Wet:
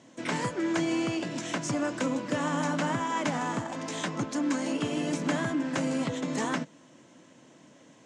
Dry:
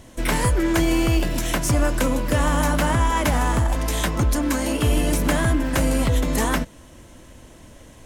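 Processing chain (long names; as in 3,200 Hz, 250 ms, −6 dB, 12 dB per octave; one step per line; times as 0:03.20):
elliptic band-pass filter 150–7,200 Hz, stop band 40 dB
parametric band 280 Hz +5 dB 0.27 octaves
level −7.5 dB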